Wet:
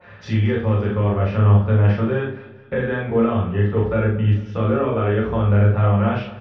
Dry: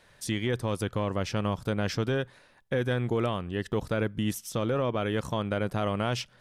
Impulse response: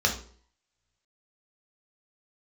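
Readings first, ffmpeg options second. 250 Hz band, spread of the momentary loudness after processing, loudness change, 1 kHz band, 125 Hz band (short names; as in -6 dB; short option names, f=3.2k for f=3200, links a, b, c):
+9.0 dB, 8 LU, +11.0 dB, +7.5 dB, +15.0 dB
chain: -filter_complex "[0:a]lowpass=f=2.8k:w=0.5412,lowpass=f=2.8k:w=1.3066,agate=range=-33dB:threshold=-48dB:ratio=3:detection=peak,lowshelf=f=150:g=3.5,acompressor=mode=upward:threshold=-29dB:ratio=2.5,flanger=delay=5.6:depth=9.5:regen=-48:speed=0.5:shape=sinusoidal,asplit=2[a][b];[b]adelay=39,volume=-3dB[c];[a][c]amix=inputs=2:normalize=0,aecho=1:1:218|436|654:0.126|0.0529|0.0222[d];[1:a]atrim=start_sample=2205[e];[d][e]afir=irnorm=-1:irlink=0,adynamicequalizer=threshold=0.0224:dfrequency=1900:dqfactor=0.7:tfrequency=1900:tqfactor=0.7:attack=5:release=100:ratio=0.375:range=1.5:mode=cutabove:tftype=highshelf,volume=-2.5dB"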